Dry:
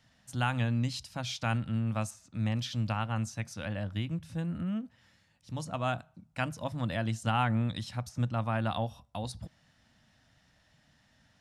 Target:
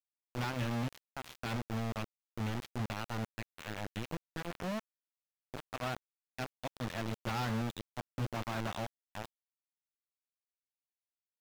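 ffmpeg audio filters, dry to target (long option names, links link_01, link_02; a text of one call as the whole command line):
ffmpeg -i in.wav -filter_complex "[0:a]acrusher=bits=4:mix=0:aa=0.000001,acrossover=split=4200[link_01][link_02];[link_02]acompressor=threshold=-44dB:ratio=4:attack=1:release=60[link_03];[link_01][link_03]amix=inputs=2:normalize=0,aeval=exprs='0.0668*(abs(mod(val(0)/0.0668+3,4)-2)-1)':channel_layout=same,volume=-6.5dB" out.wav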